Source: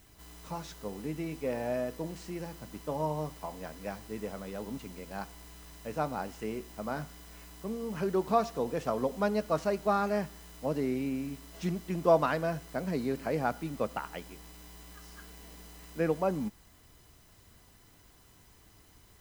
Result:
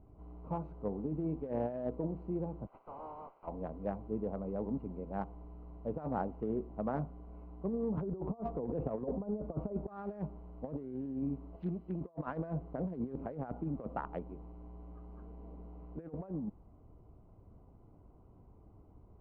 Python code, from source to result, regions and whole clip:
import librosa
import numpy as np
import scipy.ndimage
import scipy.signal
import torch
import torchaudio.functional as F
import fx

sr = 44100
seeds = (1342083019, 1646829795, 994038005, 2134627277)

y = fx.spec_clip(x, sr, under_db=23, at=(2.66, 3.46), fade=0.02)
y = fx.bandpass_edges(y, sr, low_hz=780.0, high_hz=4200.0, at=(2.66, 3.46), fade=0.02)
y = fx.tube_stage(y, sr, drive_db=40.0, bias=0.5, at=(2.66, 3.46), fade=0.02)
y = fx.chain(y, sr, fx.over_compress(threshold_db=-34.0, ratio=-0.5),
    fx.spacing_loss(db_at_10k=23),
    fx.band_widen(depth_pct=40), at=(7.97, 9.88))
y = fx.chain(y, sr, fx.ladder_lowpass(hz=5000.0, resonance_pct=35),
    fx.high_shelf(hz=2300.0, db=11.5), at=(11.56, 12.01))
y = fx.wiener(y, sr, points=25)
y = scipy.signal.sosfilt(scipy.signal.butter(2, 1100.0, 'lowpass', fs=sr, output='sos'), y)
y = fx.over_compress(y, sr, threshold_db=-36.0, ratio=-0.5)